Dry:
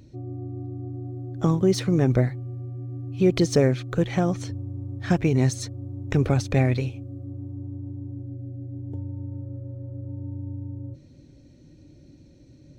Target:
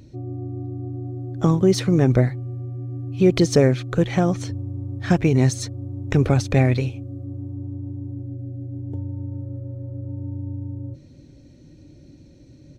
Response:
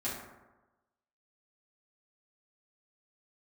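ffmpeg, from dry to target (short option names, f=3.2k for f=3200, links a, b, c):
-af "aresample=32000,aresample=44100,volume=3.5dB"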